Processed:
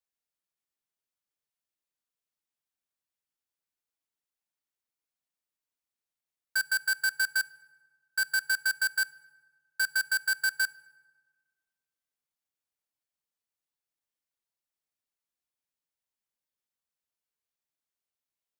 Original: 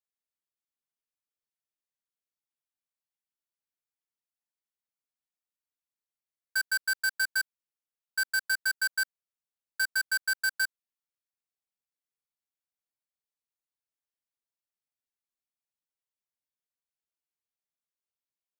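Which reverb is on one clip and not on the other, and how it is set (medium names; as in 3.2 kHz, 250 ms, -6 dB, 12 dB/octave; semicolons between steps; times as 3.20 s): FDN reverb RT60 1.5 s, low-frequency decay 1.1×, high-frequency decay 0.6×, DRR 19.5 dB; trim +1 dB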